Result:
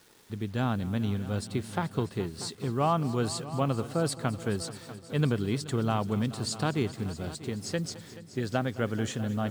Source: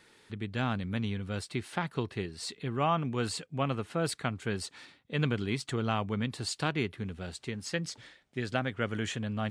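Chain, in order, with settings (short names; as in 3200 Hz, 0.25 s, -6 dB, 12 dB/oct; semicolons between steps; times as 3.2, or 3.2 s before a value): bell 2300 Hz -9 dB 1.3 oct; requantised 10-bit, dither none; on a send: multi-head echo 0.214 s, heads all three, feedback 42%, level -18.5 dB; on the sum: gain +3.5 dB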